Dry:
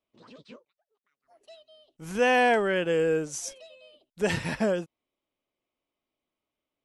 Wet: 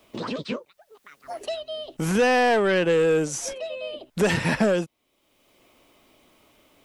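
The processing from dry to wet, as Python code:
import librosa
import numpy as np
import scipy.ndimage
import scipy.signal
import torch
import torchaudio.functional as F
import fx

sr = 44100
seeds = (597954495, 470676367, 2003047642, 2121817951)

y = 10.0 ** (-21.5 / 20.0) * np.tanh(x / 10.0 ** (-21.5 / 20.0))
y = fx.band_squash(y, sr, depth_pct=70)
y = y * librosa.db_to_amplitude(7.5)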